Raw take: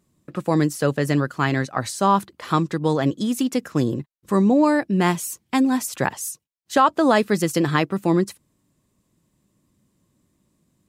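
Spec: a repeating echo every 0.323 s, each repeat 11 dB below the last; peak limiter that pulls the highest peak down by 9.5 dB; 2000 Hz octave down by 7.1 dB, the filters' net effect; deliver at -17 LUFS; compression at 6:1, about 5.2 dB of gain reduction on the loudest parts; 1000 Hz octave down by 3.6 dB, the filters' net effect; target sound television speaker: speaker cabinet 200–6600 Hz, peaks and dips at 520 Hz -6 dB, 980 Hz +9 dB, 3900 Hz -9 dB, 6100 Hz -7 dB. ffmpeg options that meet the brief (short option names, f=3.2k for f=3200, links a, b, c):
-af "equalizer=f=1k:t=o:g=-8.5,equalizer=f=2k:t=o:g=-6,acompressor=threshold=-20dB:ratio=6,alimiter=limit=-20.5dB:level=0:latency=1,highpass=f=200:w=0.5412,highpass=f=200:w=1.3066,equalizer=f=520:t=q:w=4:g=-6,equalizer=f=980:t=q:w=4:g=9,equalizer=f=3.9k:t=q:w=4:g=-9,equalizer=f=6.1k:t=q:w=4:g=-7,lowpass=f=6.6k:w=0.5412,lowpass=f=6.6k:w=1.3066,aecho=1:1:323|646|969:0.282|0.0789|0.0221,volume=15dB"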